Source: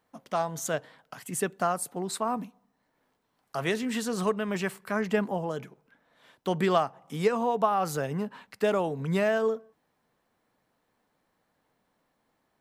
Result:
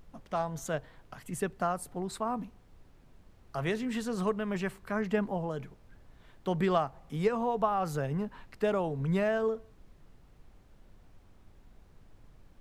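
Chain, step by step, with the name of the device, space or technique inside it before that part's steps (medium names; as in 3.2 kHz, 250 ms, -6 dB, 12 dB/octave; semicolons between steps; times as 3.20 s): car interior (peaking EQ 130 Hz +6 dB 0.77 oct; treble shelf 3.8 kHz -7 dB; brown noise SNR 20 dB); trim -3.5 dB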